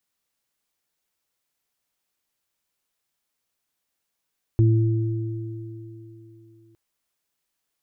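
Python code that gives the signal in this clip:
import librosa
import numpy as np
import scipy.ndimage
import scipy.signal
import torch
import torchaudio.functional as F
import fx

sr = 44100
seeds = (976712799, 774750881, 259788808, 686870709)

y = fx.additive(sr, length_s=2.16, hz=112.0, level_db=-13.0, upper_db=(-17.5, -9.0), decay_s=3.0, upper_decays_s=(0.81, 3.94))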